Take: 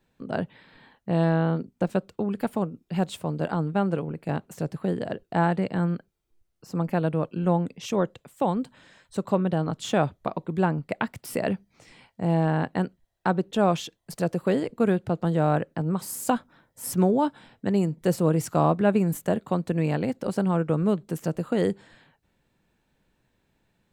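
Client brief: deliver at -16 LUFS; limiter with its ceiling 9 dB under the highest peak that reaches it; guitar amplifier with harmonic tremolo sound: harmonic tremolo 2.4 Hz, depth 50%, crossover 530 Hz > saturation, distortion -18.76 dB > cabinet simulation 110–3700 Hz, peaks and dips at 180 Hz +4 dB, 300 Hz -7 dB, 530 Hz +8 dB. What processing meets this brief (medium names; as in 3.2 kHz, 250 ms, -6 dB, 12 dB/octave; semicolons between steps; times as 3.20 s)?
peak limiter -16.5 dBFS; harmonic tremolo 2.4 Hz, depth 50%, crossover 530 Hz; saturation -20.5 dBFS; cabinet simulation 110–3700 Hz, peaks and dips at 180 Hz +4 dB, 300 Hz -7 dB, 530 Hz +8 dB; trim +14.5 dB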